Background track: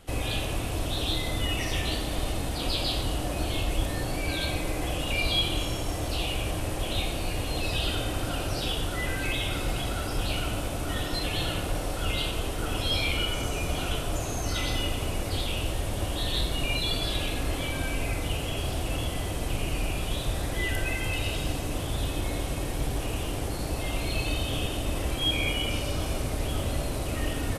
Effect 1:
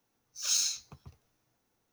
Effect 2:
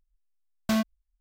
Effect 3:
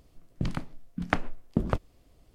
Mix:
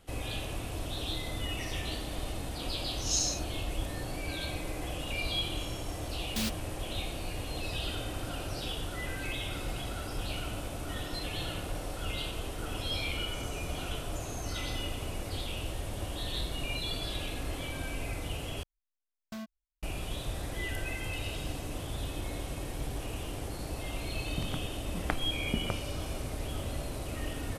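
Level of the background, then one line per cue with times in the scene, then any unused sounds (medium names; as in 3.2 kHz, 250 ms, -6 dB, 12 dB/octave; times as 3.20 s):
background track -7 dB
2.62 s: add 1 -13.5 dB + frequency weighting ITU-R 468
5.67 s: add 2 -8.5 dB + delay time shaken by noise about 3.8 kHz, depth 0.49 ms
18.63 s: replace with 2 -16.5 dB
23.97 s: add 3 -7 dB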